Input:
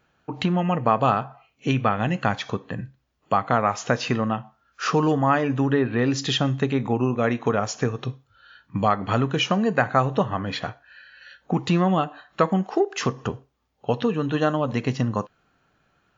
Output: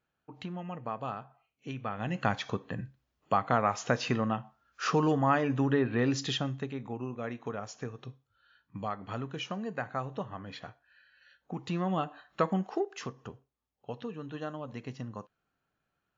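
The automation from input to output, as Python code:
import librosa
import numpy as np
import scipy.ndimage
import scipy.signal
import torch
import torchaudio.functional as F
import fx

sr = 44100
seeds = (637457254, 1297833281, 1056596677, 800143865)

y = fx.gain(x, sr, db=fx.line((1.78, -17.0), (2.25, -6.0), (6.14, -6.0), (6.75, -15.0), (11.56, -15.0), (12.06, -8.0), (12.68, -8.0), (13.14, -16.5)))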